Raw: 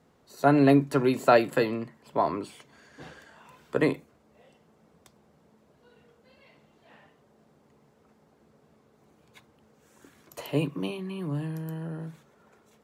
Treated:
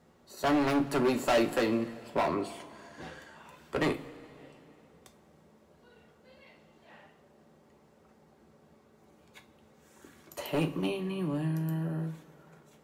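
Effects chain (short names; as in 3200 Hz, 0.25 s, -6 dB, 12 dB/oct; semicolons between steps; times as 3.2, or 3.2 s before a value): hard clip -24 dBFS, distortion -5 dB; two-slope reverb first 0.25 s, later 2.9 s, from -18 dB, DRR 5.5 dB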